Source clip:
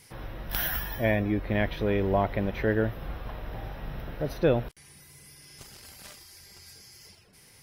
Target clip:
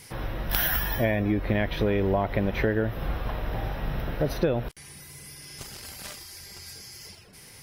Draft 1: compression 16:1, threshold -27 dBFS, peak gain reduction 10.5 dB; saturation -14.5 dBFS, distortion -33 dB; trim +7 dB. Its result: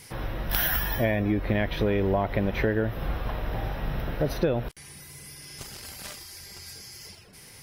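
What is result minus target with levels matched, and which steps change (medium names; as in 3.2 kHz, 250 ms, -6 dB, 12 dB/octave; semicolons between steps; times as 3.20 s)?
saturation: distortion +15 dB
change: saturation -6 dBFS, distortion -48 dB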